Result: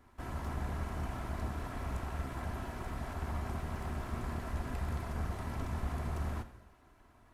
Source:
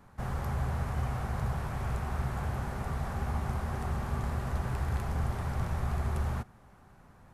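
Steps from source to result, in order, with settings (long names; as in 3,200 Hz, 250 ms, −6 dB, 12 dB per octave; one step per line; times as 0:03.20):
lower of the sound and its delayed copy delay 3 ms
reverb whose tail is shaped and stops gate 350 ms falling, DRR 10.5 dB
level −4 dB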